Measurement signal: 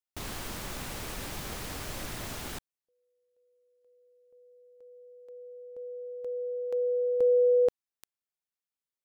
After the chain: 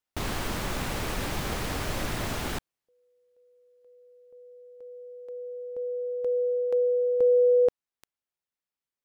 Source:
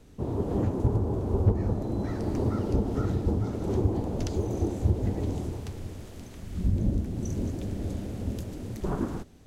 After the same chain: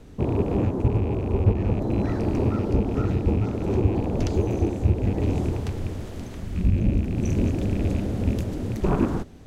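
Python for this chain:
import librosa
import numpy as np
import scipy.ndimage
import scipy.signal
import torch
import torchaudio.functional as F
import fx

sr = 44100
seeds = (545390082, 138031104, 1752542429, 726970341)

y = fx.rattle_buzz(x, sr, strikes_db=-29.0, level_db=-37.0)
y = fx.rider(y, sr, range_db=3, speed_s=0.5)
y = fx.high_shelf(y, sr, hz=4200.0, db=-7.5)
y = y * 10.0 ** (5.5 / 20.0)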